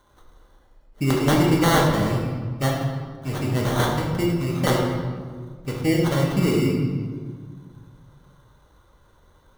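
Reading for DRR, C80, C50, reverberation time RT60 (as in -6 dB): -2.5 dB, 3.5 dB, 2.0 dB, 1.7 s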